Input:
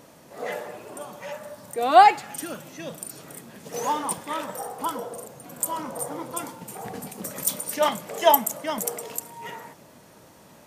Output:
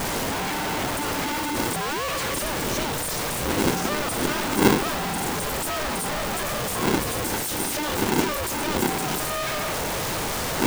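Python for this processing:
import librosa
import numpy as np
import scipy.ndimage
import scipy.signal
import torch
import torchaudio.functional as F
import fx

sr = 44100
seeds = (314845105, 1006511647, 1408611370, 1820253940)

y = np.sign(x) * np.sqrt(np.mean(np.square(x)))
y = fx.dmg_wind(y, sr, seeds[0], corner_hz=110.0, level_db=-30.0)
y = fx.high_shelf(y, sr, hz=11000.0, db=-4.0)
y = y * np.sign(np.sin(2.0 * np.pi * 300.0 * np.arange(len(y)) / sr))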